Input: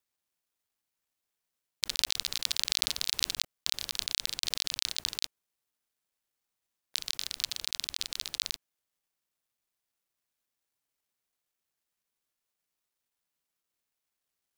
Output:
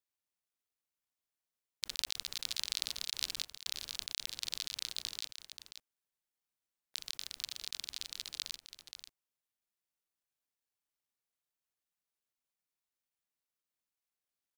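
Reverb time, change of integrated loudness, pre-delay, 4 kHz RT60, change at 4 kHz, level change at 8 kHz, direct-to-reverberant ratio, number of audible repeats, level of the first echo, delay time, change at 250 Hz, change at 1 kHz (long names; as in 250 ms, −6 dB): no reverb audible, −7.5 dB, no reverb audible, no reverb audible, −7.5 dB, −7.5 dB, no reverb audible, 1, −9.5 dB, 532 ms, −7.5 dB, −7.5 dB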